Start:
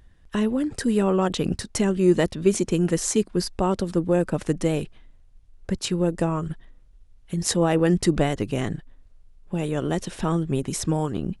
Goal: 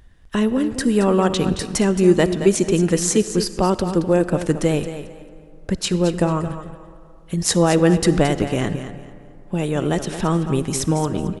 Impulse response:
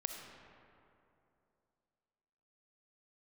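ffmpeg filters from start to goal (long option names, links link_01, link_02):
-filter_complex "[0:a]aecho=1:1:222|444|666:0.282|0.0648|0.0149,asplit=2[link_01][link_02];[1:a]atrim=start_sample=2205,lowshelf=frequency=340:gain=-6.5[link_03];[link_02][link_03]afir=irnorm=-1:irlink=0,volume=-6dB[link_04];[link_01][link_04]amix=inputs=2:normalize=0,volume=2dB"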